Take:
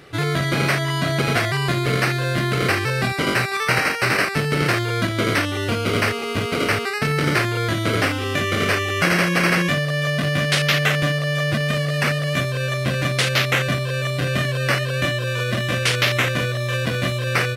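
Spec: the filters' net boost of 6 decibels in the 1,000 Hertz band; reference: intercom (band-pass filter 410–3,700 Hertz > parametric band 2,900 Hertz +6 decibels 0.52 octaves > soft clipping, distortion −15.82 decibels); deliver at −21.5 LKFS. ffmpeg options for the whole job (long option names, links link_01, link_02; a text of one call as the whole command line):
ffmpeg -i in.wav -af "highpass=410,lowpass=3700,equalizer=frequency=1000:width_type=o:gain=8,equalizer=frequency=2900:width_type=o:width=0.52:gain=6,asoftclip=threshold=-11.5dB,volume=-1dB" out.wav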